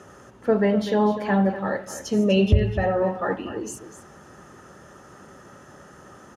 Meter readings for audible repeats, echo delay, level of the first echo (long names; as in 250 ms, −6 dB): 1, 247 ms, −12.0 dB